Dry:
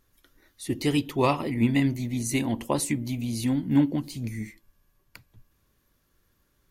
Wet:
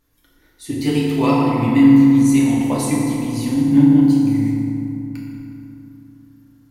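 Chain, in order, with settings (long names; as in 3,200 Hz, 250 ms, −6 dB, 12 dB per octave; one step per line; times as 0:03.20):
feedback delay network reverb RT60 3 s, low-frequency decay 1.3×, high-frequency decay 0.5×, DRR −5.5 dB
level −1 dB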